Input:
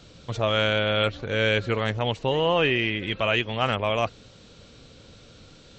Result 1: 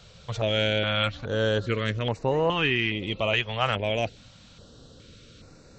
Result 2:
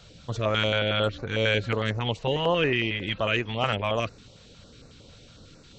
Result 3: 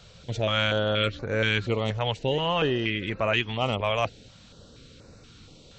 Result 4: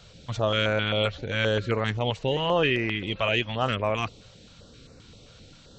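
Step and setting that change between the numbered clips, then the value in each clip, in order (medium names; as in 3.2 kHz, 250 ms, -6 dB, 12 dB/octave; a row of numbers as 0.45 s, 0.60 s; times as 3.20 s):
step-sequenced notch, rate: 2.4 Hz, 11 Hz, 4.2 Hz, 7.6 Hz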